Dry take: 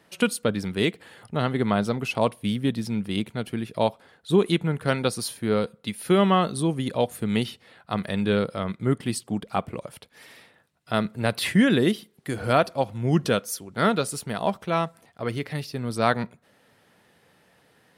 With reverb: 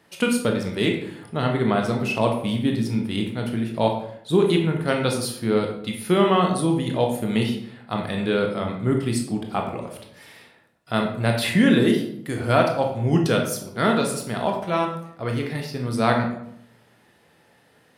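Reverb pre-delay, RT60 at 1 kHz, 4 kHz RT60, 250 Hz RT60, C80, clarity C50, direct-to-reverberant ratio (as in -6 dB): 18 ms, 0.70 s, 0.50 s, 0.85 s, 9.0 dB, 5.5 dB, 1.5 dB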